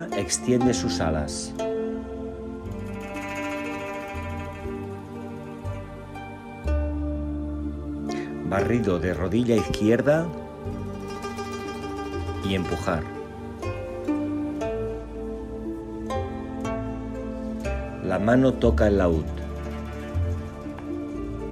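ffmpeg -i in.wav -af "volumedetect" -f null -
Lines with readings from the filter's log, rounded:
mean_volume: -26.8 dB
max_volume: -6.3 dB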